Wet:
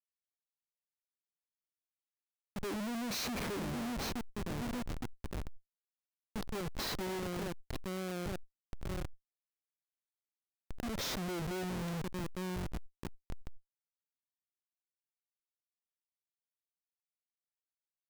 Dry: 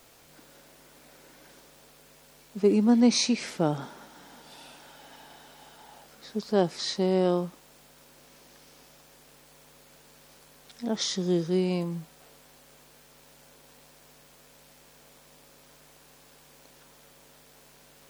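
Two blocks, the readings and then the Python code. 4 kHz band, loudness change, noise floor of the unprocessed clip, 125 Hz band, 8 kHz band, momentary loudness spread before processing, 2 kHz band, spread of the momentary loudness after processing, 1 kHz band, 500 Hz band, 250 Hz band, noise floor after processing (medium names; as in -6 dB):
-9.0 dB, -13.5 dB, -56 dBFS, -6.5 dB, -9.5 dB, 17 LU, -2.0 dB, 13 LU, -6.0 dB, -13.0 dB, -12.5 dB, under -85 dBFS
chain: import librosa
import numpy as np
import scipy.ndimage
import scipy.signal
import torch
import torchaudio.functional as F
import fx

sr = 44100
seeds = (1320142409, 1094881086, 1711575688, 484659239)

y = fx.echo_feedback(x, sr, ms=863, feedback_pct=44, wet_db=-10.0)
y = fx.schmitt(y, sr, flips_db=-33.5)
y = fx.quant_float(y, sr, bits=8)
y = fx.sustainer(y, sr, db_per_s=42.0)
y = y * 10.0 ** (-6.0 / 20.0)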